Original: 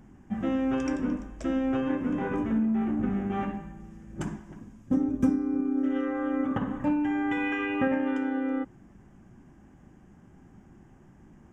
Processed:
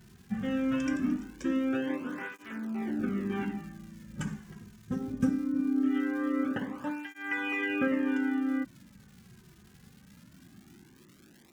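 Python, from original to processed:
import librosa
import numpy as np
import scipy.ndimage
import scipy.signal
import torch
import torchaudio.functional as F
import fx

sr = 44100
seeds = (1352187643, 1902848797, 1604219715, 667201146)

y = fx.dmg_crackle(x, sr, seeds[0], per_s=330.0, level_db=-47.0)
y = fx.curve_eq(y, sr, hz=(350.0, 770.0, 1500.0), db=(0, -6, 4))
y = fx.flanger_cancel(y, sr, hz=0.21, depth_ms=3.7)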